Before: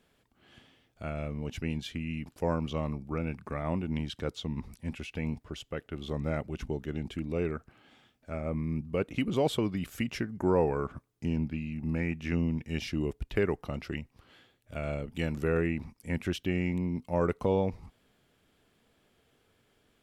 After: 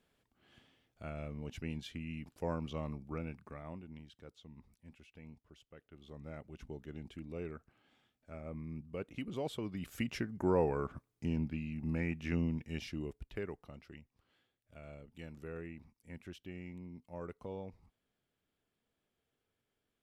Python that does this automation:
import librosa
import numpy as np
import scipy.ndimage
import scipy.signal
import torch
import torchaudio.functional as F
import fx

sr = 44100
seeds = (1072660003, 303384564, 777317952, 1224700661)

y = fx.gain(x, sr, db=fx.line((3.17, -7.5), (4.06, -20.0), (5.74, -20.0), (6.81, -11.5), (9.59, -11.5), (9.99, -4.5), (12.44, -4.5), (13.85, -17.0)))